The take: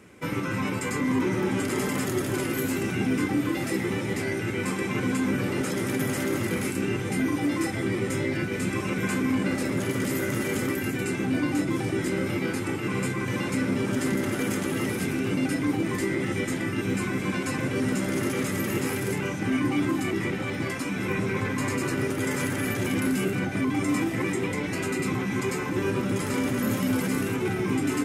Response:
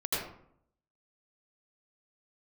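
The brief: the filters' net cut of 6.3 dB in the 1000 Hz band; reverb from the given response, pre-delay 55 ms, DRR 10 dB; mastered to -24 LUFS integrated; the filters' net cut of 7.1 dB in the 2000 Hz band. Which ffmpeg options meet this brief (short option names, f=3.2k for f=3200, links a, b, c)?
-filter_complex "[0:a]equalizer=f=1k:t=o:g=-6,equalizer=f=2k:t=o:g=-7,asplit=2[a][b];[1:a]atrim=start_sample=2205,adelay=55[c];[b][c]afir=irnorm=-1:irlink=0,volume=-17dB[d];[a][d]amix=inputs=2:normalize=0,volume=4dB"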